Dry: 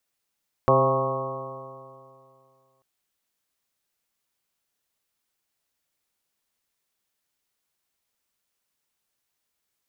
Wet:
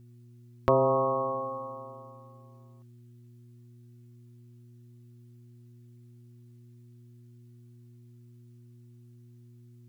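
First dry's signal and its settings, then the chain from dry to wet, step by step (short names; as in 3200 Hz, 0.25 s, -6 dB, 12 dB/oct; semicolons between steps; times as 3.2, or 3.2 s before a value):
stretched partials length 2.14 s, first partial 131 Hz, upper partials -6/-0.5/4.5/-0.5/-3.5/-5/4/-12 dB, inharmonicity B 0.0015, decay 2.43 s, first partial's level -23 dB
in parallel at 0 dB: compressor, threshold -30 dBFS; on the sum: flange 0.26 Hz, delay 2.6 ms, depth 1.4 ms, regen -47%; buzz 120 Hz, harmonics 3, -53 dBFS -9 dB/oct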